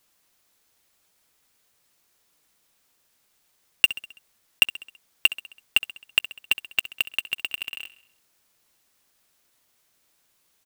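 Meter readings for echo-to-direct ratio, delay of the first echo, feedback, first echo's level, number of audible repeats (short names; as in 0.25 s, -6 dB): -14.5 dB, 66 ms, 54%, -16.0 dB, 4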